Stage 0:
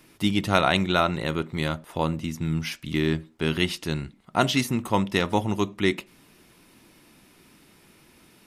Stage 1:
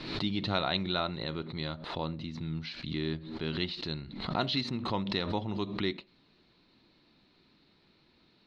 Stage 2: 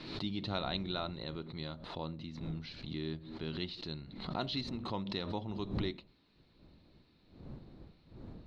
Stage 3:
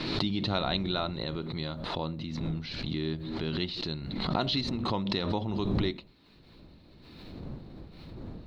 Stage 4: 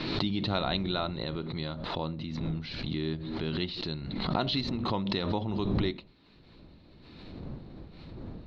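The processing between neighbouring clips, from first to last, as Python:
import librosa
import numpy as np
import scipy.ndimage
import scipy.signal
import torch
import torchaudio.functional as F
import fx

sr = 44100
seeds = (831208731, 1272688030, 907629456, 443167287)

y1 = fx.ladder_lowpass(x, sr, hz=4300.0, resonance_pct=85)
y1 = fx.high_shelf(y1, sr, hz=2500.0, db=-11.0)
y1 = fx.pre_swell(y1, sr, db_per_s=60.0)
y1 = y1 * 10.0 ** (3.0 / 20.0)
y2 = fx.dmg_wind(y1, sr, seeds[0], corner_hz=220.0, level_db=-45.0)
y2 = fx.dynamic_eq(y2, sr, hz=1900.0, q=1.1, threshold_db=-49.0, ratio=4.0, max_db=-4)
y2 = y2 * 10.0 ** (-5.5 / 20.0)
y3 = fx.pre_swell(y2, sr, db_per_s=31.0)
y3 = y3 * 10.0 ** (6.5 / 20.0)
y4 = scipy.signal.sosfilt(scipy.signal.butter(2, 5100.0, 'lowpass', fs=sr, output='sos'), y3)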